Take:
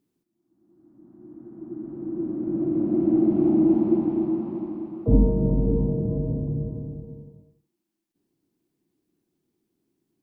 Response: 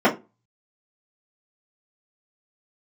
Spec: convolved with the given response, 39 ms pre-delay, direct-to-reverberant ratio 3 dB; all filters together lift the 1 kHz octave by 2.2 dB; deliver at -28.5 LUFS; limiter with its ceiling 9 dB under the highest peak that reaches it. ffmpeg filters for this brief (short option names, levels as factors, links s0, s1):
-filter_complex "[0:a]equalizer=f=1000:t=o:g=3,alimiter=limit=0.178:level=0:latency=1,asplit=2[s0][s1];[1:a]atrim=start_sample=2205,adelay=39[s2];[s1][s2]afir=irnorm=-1:irlink=0,volume=0.0631[s3];[s0][s3]amix=inputs=2:normalize=0,volume=0.447"